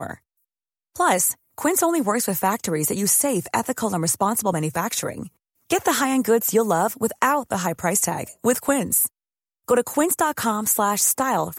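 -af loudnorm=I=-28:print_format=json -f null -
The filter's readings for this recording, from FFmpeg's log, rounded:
"input_i" : "-20.9",
"input_tp" : "-6.1",
"input_lra" : "1.3",
"input_thresh" : "-31.2",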